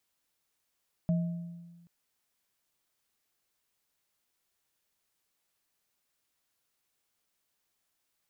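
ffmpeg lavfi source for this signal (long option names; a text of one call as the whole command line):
ffmpeg -f lavfi -i "aevalsrc='0.0708*pow(10,-3*t/1.41)*sin(2*PI*171*t)+0.0158*pow(10,-3*t/0.84)*sin(2*PI*632*t)':duration=0.78:sample_rate=44100" out.wav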